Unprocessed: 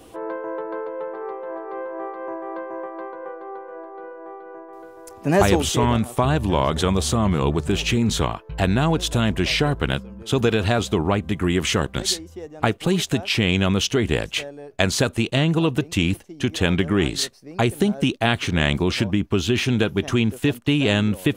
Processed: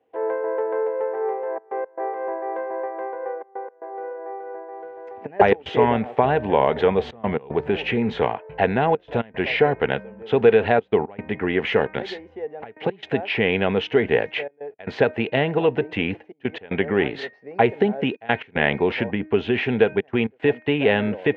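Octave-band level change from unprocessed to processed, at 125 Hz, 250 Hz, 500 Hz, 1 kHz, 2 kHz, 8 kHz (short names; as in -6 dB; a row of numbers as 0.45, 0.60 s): -8.5 dB, -4.0 dB, +4.0 dB, +2.5 dB, +0.5 dB, under -30 dB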